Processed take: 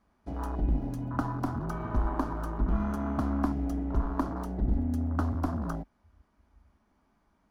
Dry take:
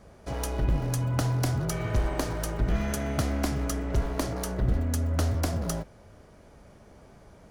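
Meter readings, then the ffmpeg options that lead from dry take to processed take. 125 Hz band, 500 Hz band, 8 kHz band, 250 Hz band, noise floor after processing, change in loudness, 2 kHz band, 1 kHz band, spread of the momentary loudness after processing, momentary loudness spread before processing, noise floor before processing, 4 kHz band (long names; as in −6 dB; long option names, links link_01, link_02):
−5.0 dB, −6.0 dB, below −20 dB, +1.0 dB, −71 dBFS, −2.5 dB, −7.0 dB, +1.0 dB, 5 LU, 5 LU, −53 dBFS, below −15 dB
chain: -af "afwtdn=0.0224,equalizer=frequency=125:width_type=o:width=1:gain=-11,equalizer=frequency=250:width_type=o:width=1:gain=8,equalizer=frequency=500:width_type=o:width=1:gain=-12,equalizer=frequency=1000:width_type=o:width=1:gain=7,equalizer=frequency=8000:width_type=o:width=1:gain=-6"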